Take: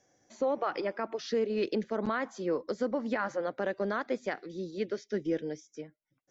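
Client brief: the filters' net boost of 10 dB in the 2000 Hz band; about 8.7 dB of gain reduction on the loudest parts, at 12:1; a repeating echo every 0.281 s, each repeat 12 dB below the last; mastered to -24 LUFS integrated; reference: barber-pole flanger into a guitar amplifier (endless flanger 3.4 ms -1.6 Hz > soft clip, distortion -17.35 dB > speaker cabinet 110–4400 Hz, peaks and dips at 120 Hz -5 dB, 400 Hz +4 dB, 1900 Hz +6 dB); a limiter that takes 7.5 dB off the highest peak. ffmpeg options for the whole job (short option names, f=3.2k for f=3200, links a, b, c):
-filter_complex "[0:a]equalizer=f=2k:t=o:g=8.5,acompressor=threshold=-33dB:ratio=12,alimiter=level_in=6dB:limit=-24dB:level=0:latency=1,volume=-6dB,aecho=1:1:281|562|843:0.251|0.0628|0.0157,asplit=2[a][b];[b]adelay=3.4,afreqshift=-1.6[c];[a][c]amix=inputs=2:normalize=1,asoftclip=threshold=-34.5dB,highpass=110,equalizer=f=120:t=q:w=4:g=-5,equalizer=f=400:t=q:w=4:g=4,equalizer=f=1.9k:t=q:w=4:g=6,lowpass=f=4.4k:w=0.5412,lowpass=f=4.4k:w=1.3066,volume=19.5dB"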